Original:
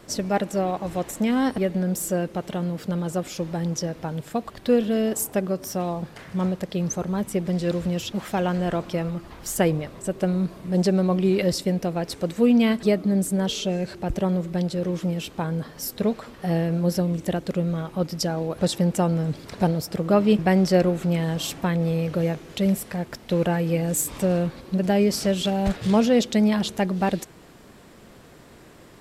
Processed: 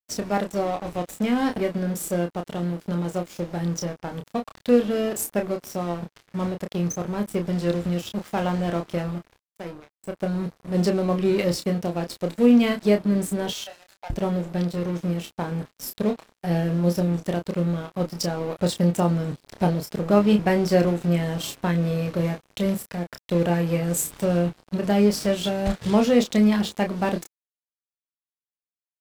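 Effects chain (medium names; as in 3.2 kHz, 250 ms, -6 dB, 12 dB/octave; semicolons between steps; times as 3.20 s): 9.38–10.46 s: fade in; 13.50–14.10 s: steep high-pass 620 Hz 48 dB/octave; crossover distortion -36 dBFS; doubling 29 ms -6 dB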